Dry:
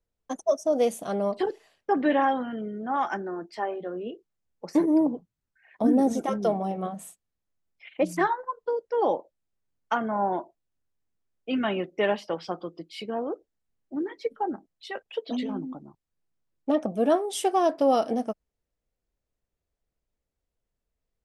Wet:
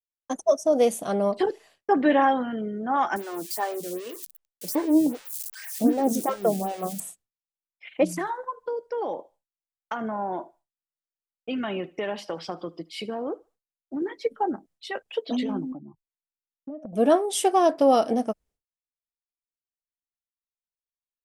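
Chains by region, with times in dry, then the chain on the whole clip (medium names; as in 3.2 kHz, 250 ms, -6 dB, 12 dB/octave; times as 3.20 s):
3.16–7.00 s: zero-crossing glitches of -27 dBFS + lamp-driven phase shifter 2.6 Hz
8.05–14.02 s: compression 5:1, threshold -29 dBFS + thinning echo 75 ms, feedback 32%, high-pass 640 Hz, level -22 dB
15.72–16.93 s: spectral contrast enhancement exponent 1.8 + compression 12:1, threshold -36 dBFS
whole clip: expander -55 dBFS; peaking EQ 9.3 kHz +3.5 dB 0.9 oct; trim +3 dB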